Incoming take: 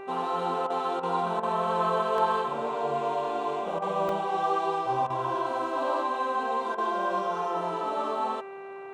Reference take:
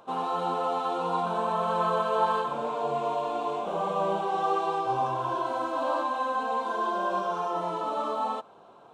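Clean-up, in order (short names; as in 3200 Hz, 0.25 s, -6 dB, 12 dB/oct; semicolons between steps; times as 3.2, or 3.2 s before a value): de-hum 391.7 Hz, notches 7; interpolate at 2.18/4.09, 1.8 ms; interpolate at 0.67/1/1.4/3.79/5.07/6.75, 29 ms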